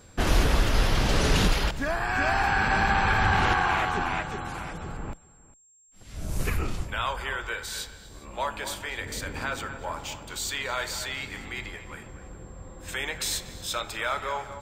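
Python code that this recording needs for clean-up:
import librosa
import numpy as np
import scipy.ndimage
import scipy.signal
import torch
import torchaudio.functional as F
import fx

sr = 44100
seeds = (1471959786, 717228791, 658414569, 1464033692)

y = fx.notch(x, sr, hz=7500.0, q=30.0)
y = fx.fix_echo_inverse(y, sr, delay_ms=405, level_db=-21.5)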